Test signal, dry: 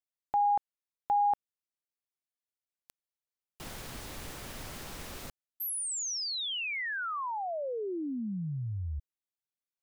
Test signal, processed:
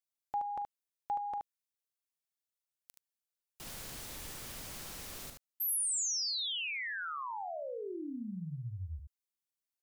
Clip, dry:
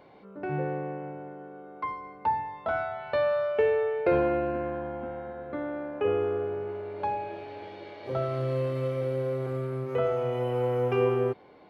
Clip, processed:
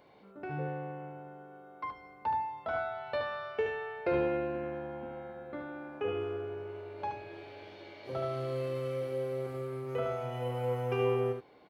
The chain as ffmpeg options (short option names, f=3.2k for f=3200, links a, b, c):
-af "highshelf=f=3.5k:g=8.5,aecho=1:1:42|74:0.15|0.531,volume=-7dB"